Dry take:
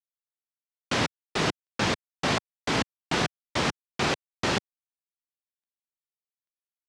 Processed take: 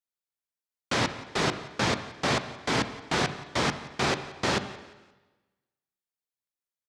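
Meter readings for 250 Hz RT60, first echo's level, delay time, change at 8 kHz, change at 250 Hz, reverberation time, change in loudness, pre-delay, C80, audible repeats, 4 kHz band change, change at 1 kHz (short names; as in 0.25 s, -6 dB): 1.2 s, -19.0 dB, 0.175 s, 0.0 dB, -0.5 dB, 1.2 s, 0.0 dB, 6 ms, 12.5 dB, 2, -0.5 dB, +0.5 dB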